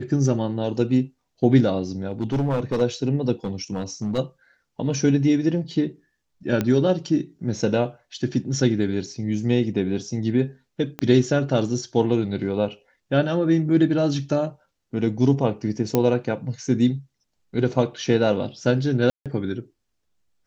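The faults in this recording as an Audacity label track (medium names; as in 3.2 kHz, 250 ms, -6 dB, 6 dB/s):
2.100000	2.820000	clipped -18.5 dBFS
3.440000	4.190000	clipped -20.5 dBFS
6.610000	6.610000	pop -10 dBFS
10.990000	10.990000	pop -14 dBFS
15.950000	15.950000	pop -6 dBFS
19.100000	19.260000	dropout 157 ms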